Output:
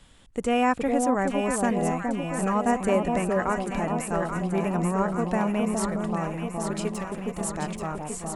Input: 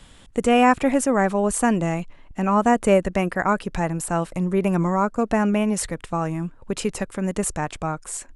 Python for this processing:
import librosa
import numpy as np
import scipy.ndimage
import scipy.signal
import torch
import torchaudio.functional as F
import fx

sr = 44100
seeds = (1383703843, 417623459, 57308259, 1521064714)

y = fx.overload_stage(x, sr, gain_db=26.0, at=(6.9, 7.41))
y = fx.echo_alternate(y, sr, ms=416, hz=1000.0, feedback_pct=78, wet_db=-3)
y = y * librosa.db_to_amplitude(-6.5)